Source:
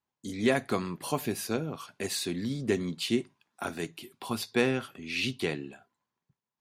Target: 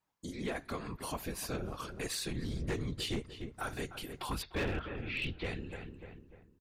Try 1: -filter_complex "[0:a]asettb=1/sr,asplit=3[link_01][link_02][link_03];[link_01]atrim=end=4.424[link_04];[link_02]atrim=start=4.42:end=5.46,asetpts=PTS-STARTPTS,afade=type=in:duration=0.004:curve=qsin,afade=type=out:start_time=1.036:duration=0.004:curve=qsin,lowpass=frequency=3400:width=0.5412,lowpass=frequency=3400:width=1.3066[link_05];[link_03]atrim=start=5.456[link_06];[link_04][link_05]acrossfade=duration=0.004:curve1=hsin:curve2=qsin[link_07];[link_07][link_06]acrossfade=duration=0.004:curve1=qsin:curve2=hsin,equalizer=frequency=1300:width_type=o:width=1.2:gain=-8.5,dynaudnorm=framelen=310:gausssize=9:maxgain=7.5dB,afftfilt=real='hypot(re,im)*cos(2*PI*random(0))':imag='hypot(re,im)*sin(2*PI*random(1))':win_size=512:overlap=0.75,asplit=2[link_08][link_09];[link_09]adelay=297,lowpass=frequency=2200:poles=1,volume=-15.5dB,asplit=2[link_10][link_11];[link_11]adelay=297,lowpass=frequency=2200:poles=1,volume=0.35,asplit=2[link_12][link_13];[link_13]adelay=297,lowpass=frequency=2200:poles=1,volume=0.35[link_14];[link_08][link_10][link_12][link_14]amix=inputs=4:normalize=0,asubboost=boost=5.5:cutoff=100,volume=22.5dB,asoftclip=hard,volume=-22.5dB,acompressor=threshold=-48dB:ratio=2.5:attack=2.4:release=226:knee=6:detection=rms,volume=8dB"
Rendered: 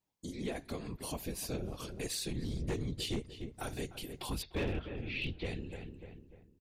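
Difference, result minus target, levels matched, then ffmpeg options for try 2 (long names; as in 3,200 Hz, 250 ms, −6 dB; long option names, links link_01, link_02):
1,000 Hz band −4.5 dB
-filter_complex "[0:a]asettb=1/sr,asplit=3[link_01][link_02][link_03];[link_01]atrim=end=4.424[link_04];[link_02]atrim=start=4.42:end=5.46,asetpts=PTS-STARTPTS,afade=type=in:duration=0.004:curve=qsin,afade=type=out:start_time=1.036:duration=0.004:curve=qsin,lowpass=frequency=3400:width=0.5412,lowpass=frequency=3400:width=1.3066[link_05];[link_03]atrim=start=5.456[link_06];[link_04][link_05]acrossfade=duration=0.004:curve1=hsin:curve2=qsin[link_07];[link_07][link_06]acrossfade=duration=0.004:curve1=qsin:curve2=hsin,equalizer=frequency=1300:width_type=o:width=1.2:gain=3,dynaudnorm=framelen=310:gausssize=9:maxgain=7.5dB,afftfilt=real='hypot(re,im)*cos(2*PI*random(0))':imag='hypot(re,im)*sin(2*PI*random(1))':win_size=512:overlap=0.75,asplit=2[link_08][link_09];[link_09]adelay=297,lowpass=frequency=2200:poles=1,volume=-15.5dB,asplit=2[link_10][link_11];[link_11]adelay=297,lowpass=frequency=2200:poles=1,volume=0.35,asplit=2[link_12][link_13];[link_13]adelay=297,lowpass=frequency=2200:poles=1,volume=0.35[link_14];[link_08][link_10][link_12][link_14]amix=inputs=4:normalize=0,asubboost=boost=5.5:cutoff=100,volume=22.5dB,asoftclip=hard,volume=-22.5dB,acompressor=threshold=-48dB:ratio=2.5:attack=2.4:release=226:knee=6:detection=rms,volume=8dB"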